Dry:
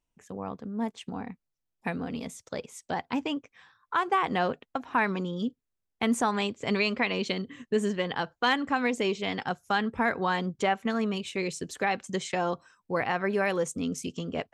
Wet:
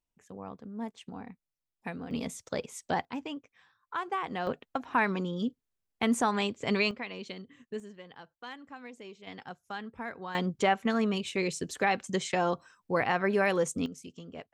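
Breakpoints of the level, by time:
−6.5 dB
from 0:02.11 +1.5 dB
from 0:03.05 −7.5 dB
from 0:04.47 −1 dB
from 0:06.91 −11.5 dB
from 0:07.80 −19 dB
from 0:09.27 −12.5 dB
from 0:10.35 +0.5 dB
from 0:13.86 −11.5 dB

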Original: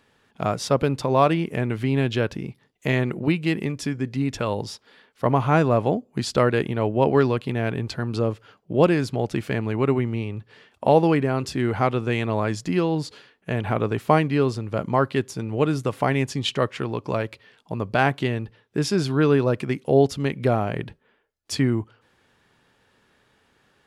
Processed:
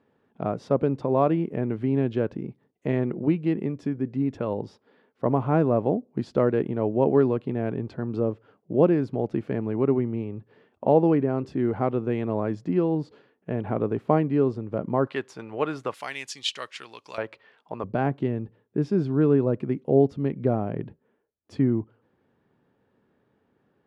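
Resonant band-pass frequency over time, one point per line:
resonant band-pass, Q 0.68
310 Hz
from 0:15.07 1,100 Hz
from 0:15.94 5,100 Hz
from 0:17.18 900 Hz
from 0:17.84 250 Hz

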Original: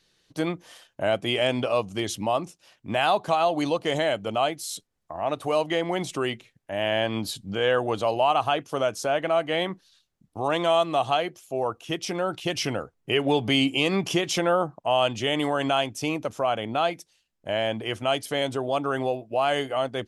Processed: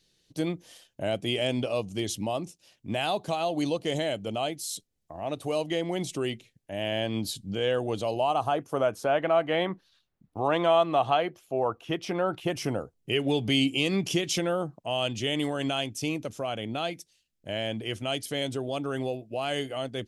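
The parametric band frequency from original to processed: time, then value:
parametric band −11.5 dB 1.8 octaves
0:08.09 1,200 Hz
0:09.12 7,900 Hz
0:12.29 7,900 Hz
0:13.10 1,000 Hz

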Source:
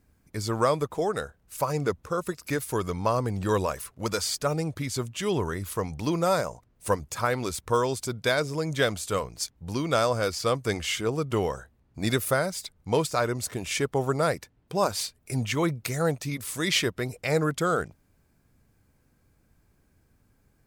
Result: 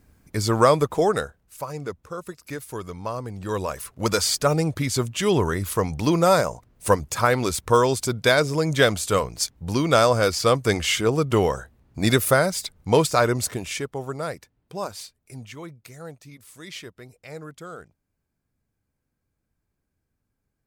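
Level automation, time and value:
0:01.14 +7 dB
0:01.56 −5 dB
0:03.38 −5 dB
0:04.06 +6.5 dB
0:13.42 +6.5 dB
0:13.92 −5 dB
0:14.73 −5 dB
0:15.69 −13.5 dB

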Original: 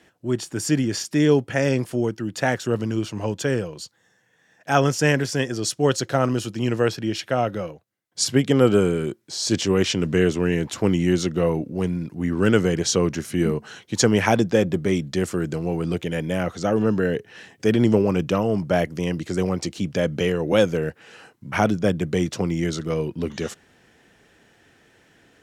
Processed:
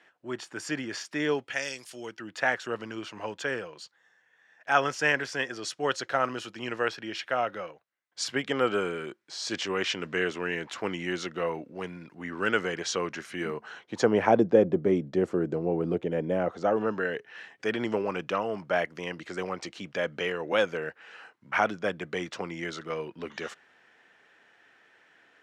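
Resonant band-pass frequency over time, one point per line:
resonant band-pass, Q 0.85
0:01.31 1,500 Hz
0:01.79 7,000 Hz
0:02.24 1,600 Hz
0:13.43 1,600 Hz
0:14.42 480 Hz
0:16.31 480 Hz
0:17.08 1,500 Hz

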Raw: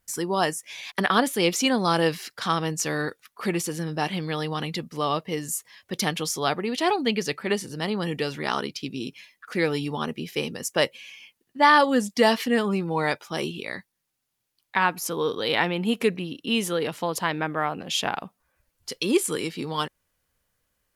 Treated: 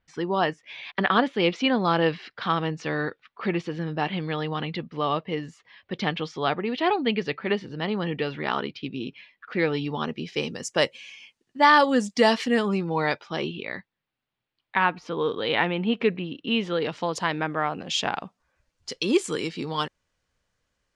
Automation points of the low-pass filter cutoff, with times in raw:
low-pass filter 24 dB per octave
0:09.55 3,600 Hz
0:10.75 7,900 Hz
0:12.62 7,900 Hz
0:13.64 3,600 Hz
0:16.57 3,600 Hz
0:17.17 7,200 Hz

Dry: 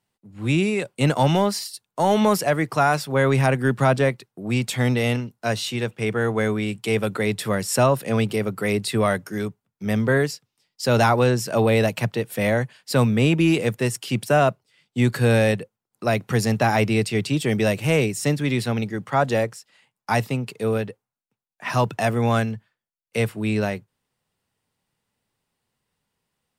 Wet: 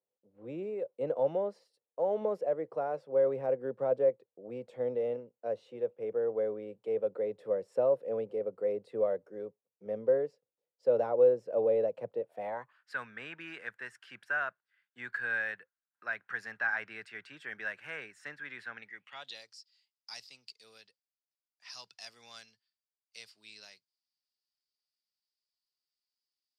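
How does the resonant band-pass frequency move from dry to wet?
resonant band-pass, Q 8.1
0:12.17 510 Hz
0:12.91 1,600 Hz
0:18.76 1,600 Hz
0:19.46 4,800 Hz

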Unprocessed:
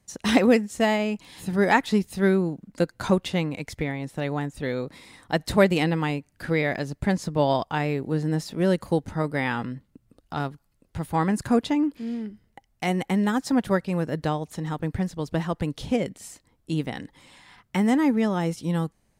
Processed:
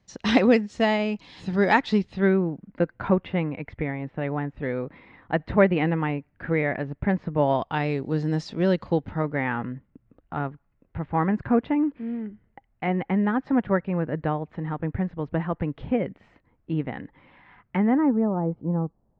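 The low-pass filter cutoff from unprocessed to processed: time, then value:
low-pass filter 24 dB per octave
0:01.92 5,200 Hz
0:02.45 2,400 Hz
0:07.46 2,400 Hz
0:07.94 5,700 Hz
0:08.47 5,700 Hz
0:09.45 2,300 Hz
0:17.77 2,300 Hz
0:18.29 1,000 Hz

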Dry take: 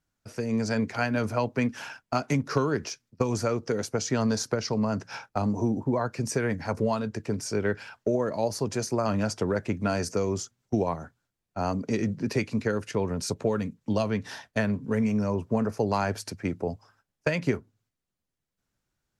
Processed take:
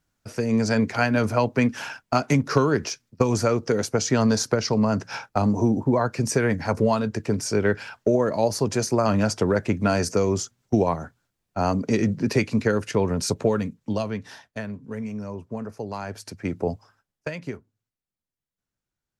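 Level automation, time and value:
0:13.41 +5.5 dB
0:14.63 −6.5 dB
0:16.02 −6.5 dB
0:16.67 +5 dB
0:17.41 −7 dB

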